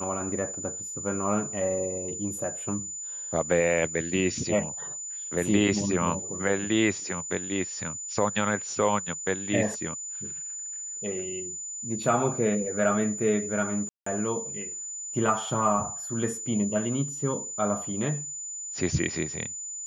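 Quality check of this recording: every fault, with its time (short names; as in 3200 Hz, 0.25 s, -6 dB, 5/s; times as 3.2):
tone 7000 Hz -34 dBFS
13.89–14.06 gap 0.174 s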